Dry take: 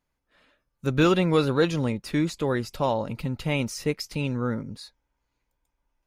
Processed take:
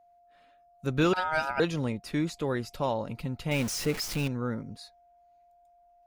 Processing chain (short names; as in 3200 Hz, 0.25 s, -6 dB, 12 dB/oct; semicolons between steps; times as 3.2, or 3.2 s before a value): 3.51–4.28 zero-crossing step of -27 dBFS; whine 700 Hz -54 dBFS; 1.13–1.6 ring modulator 1100 Hz; gain -4.5 dB